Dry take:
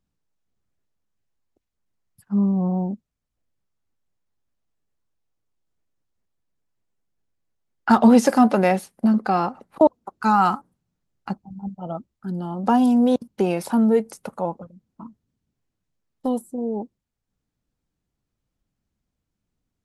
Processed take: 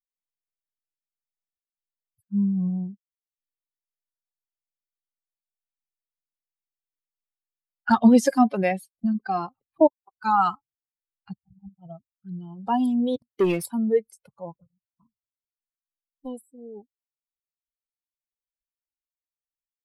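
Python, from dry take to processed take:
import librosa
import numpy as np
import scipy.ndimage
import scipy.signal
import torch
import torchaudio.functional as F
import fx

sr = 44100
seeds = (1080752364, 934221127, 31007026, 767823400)

y = fx.bin_expand(x, sr, power=2.0)
y = fx.leveller(y, sr, passes=2, at=(13.18, 13.66))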